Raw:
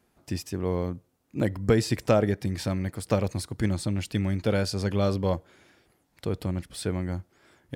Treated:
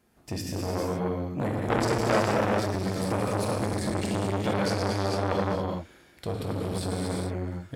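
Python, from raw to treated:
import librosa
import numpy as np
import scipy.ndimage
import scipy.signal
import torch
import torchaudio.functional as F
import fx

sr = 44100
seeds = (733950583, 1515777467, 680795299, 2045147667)

y = fx.rev_gated(x, sr, seeds[0], gate_ms=490, shape='flat', drr_db=-4.0)
y = fx.transformer_sat(y, sr, knee_hz=1500.0)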